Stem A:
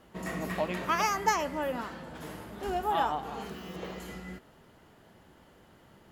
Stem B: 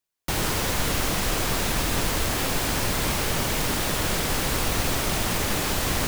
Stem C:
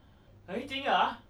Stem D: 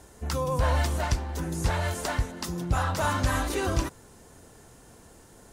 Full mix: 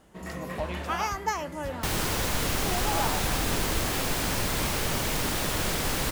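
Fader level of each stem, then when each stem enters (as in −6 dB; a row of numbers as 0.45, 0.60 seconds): −2.5, −3.0, −10.5, −13.5 decibels; 0.00, 1.55, 0.00, 0.00 seconds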